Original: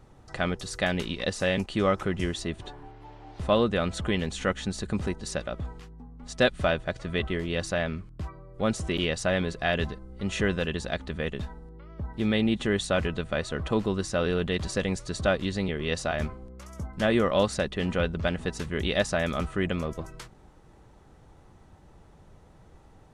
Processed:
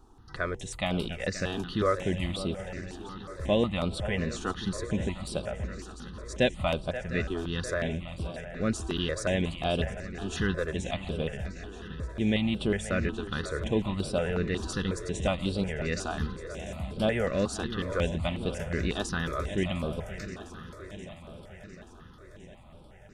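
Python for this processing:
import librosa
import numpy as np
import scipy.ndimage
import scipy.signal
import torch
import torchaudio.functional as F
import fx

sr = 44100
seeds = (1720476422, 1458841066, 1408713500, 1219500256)

y = fx.echo_swing(x, sr, ms=705, ratio=3, feedback_pct=62, wet_db=-13.0)
y = fx.phaser_held(y, sr, hz=5.5, low_hz=560.0, high_hz=6500.0)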